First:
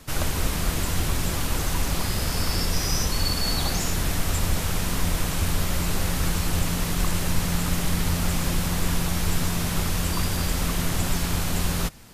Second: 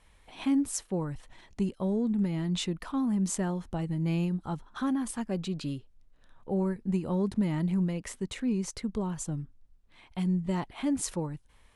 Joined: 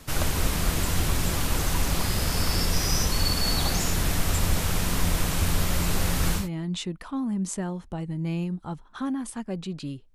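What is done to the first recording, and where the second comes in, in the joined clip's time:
first
6.41 s: go over to second from 2.22 s, crossfade 0.16 s

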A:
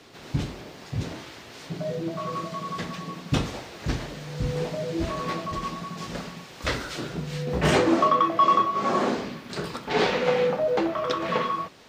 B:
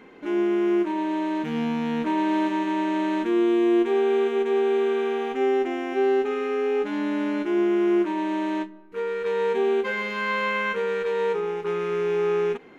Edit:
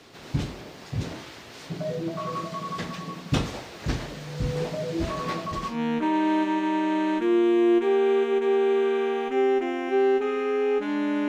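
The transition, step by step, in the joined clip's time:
A
5.73 s: go over to B from 1.77 s, crossfade 0.14 s

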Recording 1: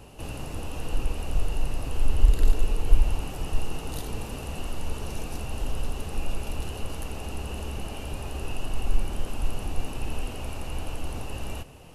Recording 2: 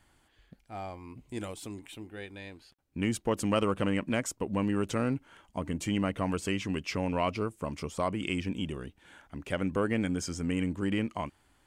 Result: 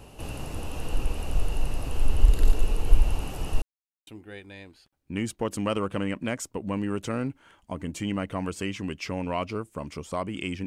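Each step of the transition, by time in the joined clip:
recording 1
3.62–4.07 s: mute
4.07 s: go over to recording 2 from 1.93 s

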